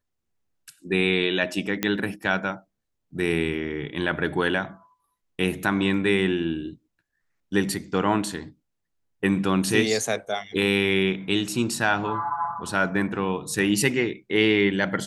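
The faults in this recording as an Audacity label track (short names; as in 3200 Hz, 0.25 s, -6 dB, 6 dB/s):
1.830000	1.830000	pop -8 dBFS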